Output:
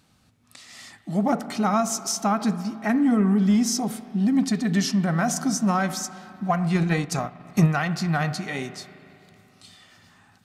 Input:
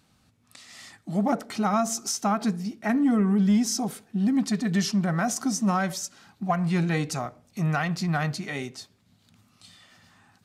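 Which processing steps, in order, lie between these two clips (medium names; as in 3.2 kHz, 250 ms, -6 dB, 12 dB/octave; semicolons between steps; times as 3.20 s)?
spring tank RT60 2.8 s, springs 37/41 ms, chirp 65 ms, DRR 12.5 dB; 6.74–7.75 s: transient shaper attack +11 dB, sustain -6 dB; trim +2 dB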